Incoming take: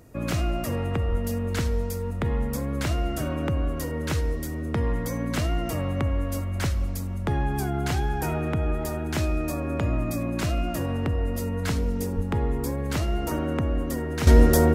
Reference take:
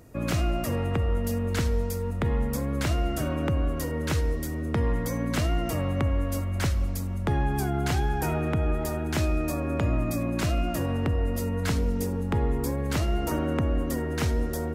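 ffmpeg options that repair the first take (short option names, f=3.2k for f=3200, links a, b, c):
-filter_complex "[0:a]asplit=3[a][b][c];[a]afade=t=out:st=1.09:d=0.02[d];[b]highpass=f=140:w=0.5412,highpass=f=140:w=1.3066,afade=t=in:st=1.09:d=0.02,afade=t=out:st=1.21:d=0.02[e];[c]afade=t=in:st=1.21:d=0.02[f];[d][e][f]amix=inputs=3:normalize=0,asplit=3[g][h][i];[g]afade=t=out:st=12.15:d=0.02[j];[h]highpass=f=140:w=0.5412,highpass=f=140:w=1.3066,afade=t=in:st=12.15:d=0.02,afade=t=out:st=12.27:d=0.02[k];[i]afade=t=in:st=12.27:d=0.02[l];[j][k][l]amix=inputs=3:normalize=0,asetnsamples=n=441:p=0,asendcmd='14.27 volume volume -12dB',volume=0dB"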